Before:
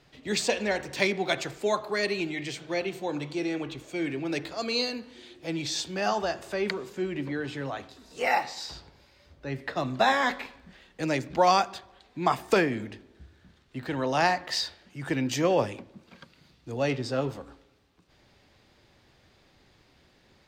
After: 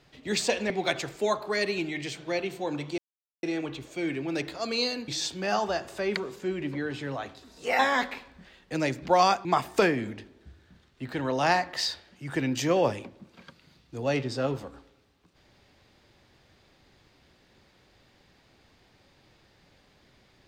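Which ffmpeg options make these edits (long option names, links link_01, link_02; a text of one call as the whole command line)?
ffmpeg -i in.wav -filter_complex "[0:a]asplit=6[link_01][link_02][link_03][link_04][link_05][link_06];[link_01]atrim=end=0.702[link_07];[link_02]atrim=start=1.118:end=3.4,asetpts=PTS-STARTPTS,afade=type=out:start_time=2.278:duration=0.004:curve=hsin,apad=pad_dur=0.45[link_08];[link_03]atrim=start=3.4:end=5.052,asetpts=PTS-STARTPTS,afade=type=in:duration=0.004:curve=hsin[link_09];[link_04]atrim=start=5.618:end=8.332[link_10];[link_05]atrim=start=10.068:end=11.732[link_11];[link_06]atrim=start=12.188[link_12];[link_08][link_09]concat=n=2:v=0:a=1[link_13];[link_07][link_13]acrossfade=duration=0.004:curve1=hsin:curve2=hsin[link_14];[link_14][link_10]acrossfade=duration=0.004:curve1=hsin:curve2=hsin[link_15];[link_15][link_11]acrossfade=duration=0.004:curve1=hsin:curve2=hsin[link_16];[link_16][link_12]acrossfade=duration=0.004:curve1=hsin:curve2=hsin" out.wav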